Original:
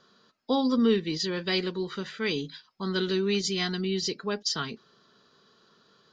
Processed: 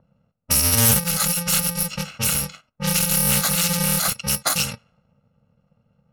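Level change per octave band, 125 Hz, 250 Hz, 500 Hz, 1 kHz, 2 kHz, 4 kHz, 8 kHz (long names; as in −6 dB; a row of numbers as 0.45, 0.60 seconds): +11.5, −0.5, −3.5, +7.0, +7.0, +6.5, +21.5 decibels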